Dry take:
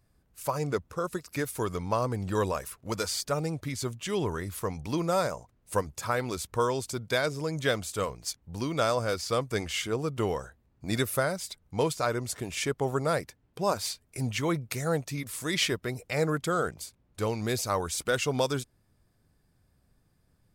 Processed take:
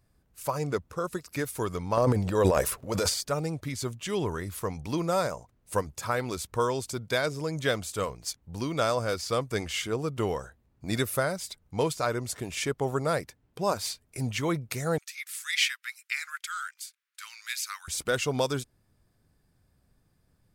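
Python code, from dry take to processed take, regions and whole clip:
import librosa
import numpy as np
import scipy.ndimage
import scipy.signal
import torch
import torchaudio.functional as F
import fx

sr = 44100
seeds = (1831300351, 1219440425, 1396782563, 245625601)

y = fx.chain(x, sr, fx.peak_eq(hz=550.0, db=7.5, octaves=0.93),
    fx.transient(attack_db=-3, sustain_db=11), at=(1.97, 3.14))
y = fx.chain(y, sr, fx.steep_highpass(hz=1400.0, slope=36),
    fx.dynamic_eq(hz=2300.0, q=2.1, threshold_db=-45.0, ratio=4.0, max_db=5), at=(14.98, 17.88))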